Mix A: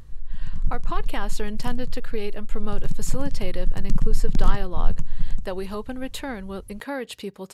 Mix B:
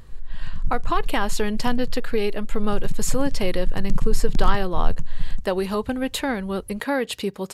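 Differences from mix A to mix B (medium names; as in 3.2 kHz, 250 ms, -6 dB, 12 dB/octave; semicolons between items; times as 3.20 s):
speech +7.0 dB; background: send -9.5 dB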